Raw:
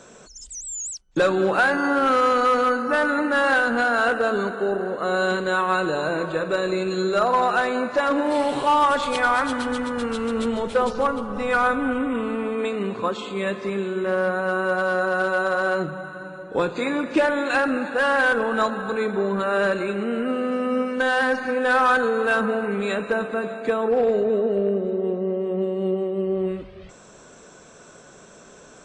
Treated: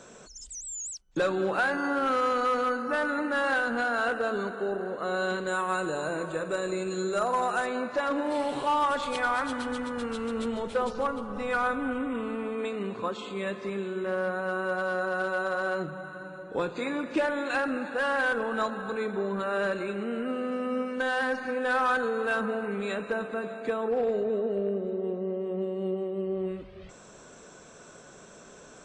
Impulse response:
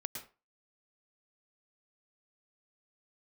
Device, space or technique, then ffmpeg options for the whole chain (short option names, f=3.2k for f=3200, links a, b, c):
parallel compression: -filter_complex "[0:a]asettb=1/sr,asplit=3[a][b][c];[a]atrim=end=5.474[d];[b]atrim=start=5.47:end=7.66,asetpts=PTS-STARTPTS,afade=t=in:d=0.004:c=qsin,afade=t=out:st=2.186:d=0.004:c=qsin,highshelf=f=5.9k:t=q:w=1.5:g=7.5[e];[c]atrim=start=7.656[f];[d][e]acrossfade=d=0.004:c1=hsin:c2=qsin[g];[g][f]acrossfade=d=0.004:c1=qsin:c2=hsin,asplit=2[h][i];[i]acompressor=threshold=-39dB:ratio=6,volume=-2dB[j];[h][j]amix=inputs=2:normalize=0,volume=-8dB"